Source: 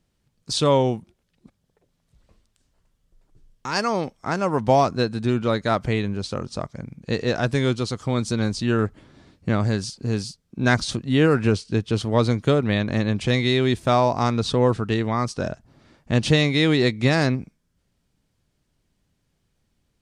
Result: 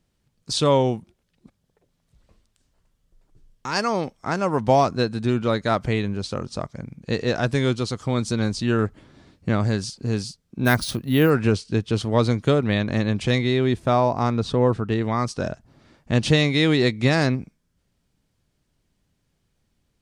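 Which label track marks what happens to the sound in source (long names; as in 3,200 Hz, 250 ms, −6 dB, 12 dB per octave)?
10.650000	11.300000	bad sample-rate conversion rate divided by 3×, down filtered, up hold
13.380000	15.020000	high-shelf EQ 2,400 Hz −8 dB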